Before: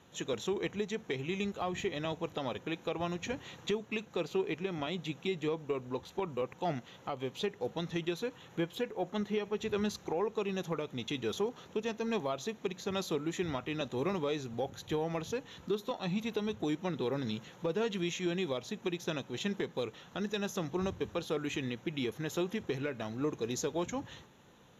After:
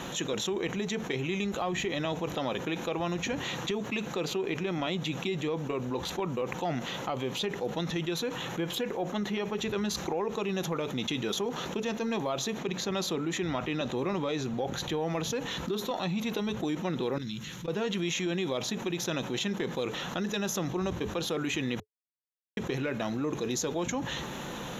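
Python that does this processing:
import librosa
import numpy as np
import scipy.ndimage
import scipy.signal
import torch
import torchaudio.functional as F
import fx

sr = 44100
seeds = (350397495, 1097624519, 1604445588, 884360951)

y = fx.high_shelf(x, sr, hz=7700.0, db=-6.5, at=(12.58, 15.03))
y = fx.tone_stack(y, sr, knobs='6-0-2', at=(17.18, 17.68))
y = fx.edit(y, sr, fx.silence(start_s=21.8, length_s=0.77), tone=tone)
y = fx.peak_eq(y, sr, hz=96.0, db=-15.0, octaves=0.33)
y = fx.notch(y, sr, hz=430.0, q=14.0)
y = fx.env_flatten(y, sr, amount_pct=70)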